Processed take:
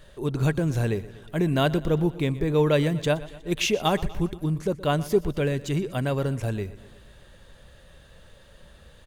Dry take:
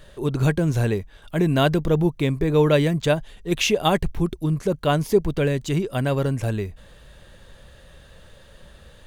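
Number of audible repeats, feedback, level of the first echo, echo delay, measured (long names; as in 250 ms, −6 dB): 4, 60%, −18.0 dB, 121 ms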